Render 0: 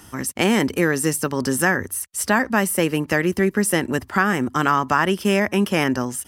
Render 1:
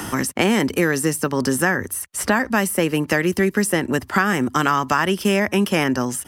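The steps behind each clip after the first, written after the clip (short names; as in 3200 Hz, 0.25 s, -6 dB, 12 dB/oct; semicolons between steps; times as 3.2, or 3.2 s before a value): three-band squash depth 70%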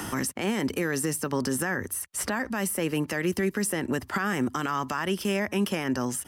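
limiter -13 dBFS, peak gain reduction 11 dB; gain -5 dB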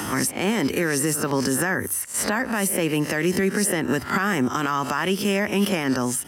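spectral swells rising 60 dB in 0.32 s; HPF 73 Hz; gain +4.5 dB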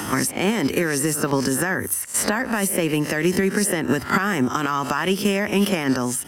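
transient shaper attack +7 dB, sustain +2 dB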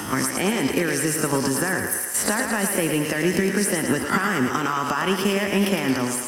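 thinning echo 0.111 s, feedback 67%, high-pass 330 Hz, level -5 dB; gain -2 dB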